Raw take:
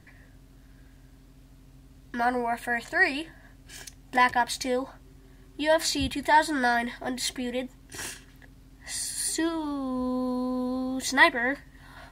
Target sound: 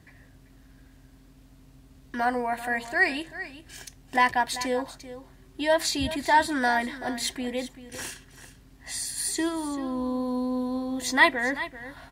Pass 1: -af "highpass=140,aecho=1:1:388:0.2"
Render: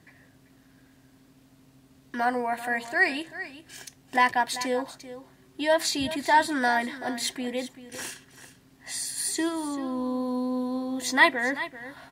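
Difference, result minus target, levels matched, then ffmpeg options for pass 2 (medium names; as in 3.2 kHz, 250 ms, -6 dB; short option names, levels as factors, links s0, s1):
125 Hz band -5.5 dB
-af "highpass=42,aecho=1:1:388:0.2"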